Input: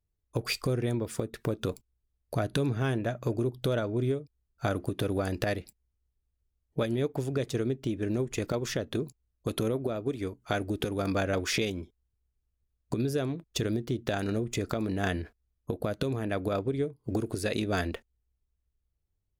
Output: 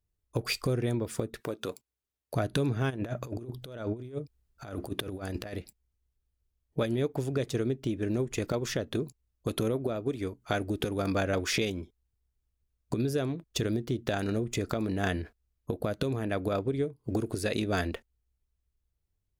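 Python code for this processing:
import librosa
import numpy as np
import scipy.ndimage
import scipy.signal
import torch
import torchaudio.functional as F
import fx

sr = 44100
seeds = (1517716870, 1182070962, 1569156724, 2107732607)

y = fx.highpass(x, sr, hz=430.0, slope=6, at=(1.41, 2.34))
y = fx.over_compress(y, sr, threshold_db=-34.0, ratio=-0.5, at=(2.89, 5.53), fade=0.02)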